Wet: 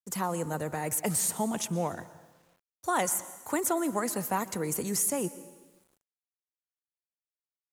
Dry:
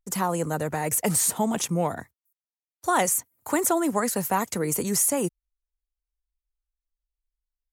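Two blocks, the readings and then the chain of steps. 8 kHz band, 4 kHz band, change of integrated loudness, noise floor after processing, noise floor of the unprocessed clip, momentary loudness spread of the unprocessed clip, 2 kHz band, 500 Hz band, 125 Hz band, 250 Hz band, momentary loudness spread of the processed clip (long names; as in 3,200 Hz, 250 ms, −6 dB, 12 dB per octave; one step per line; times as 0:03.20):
−5.5 dB, −5.5 dB, −5.5 dB, below −85 dBFS, below −85 dBFS, 7 LU, −5.5 dB, −5.5 dB, −5.5 dB, −5.5 dB, 7 LU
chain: dense smooth reverb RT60 1.2 s, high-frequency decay 0.95×, pre-delay 105 ms, DRR 15.5 dB
bit reduction 10 bits
level −5.5 dB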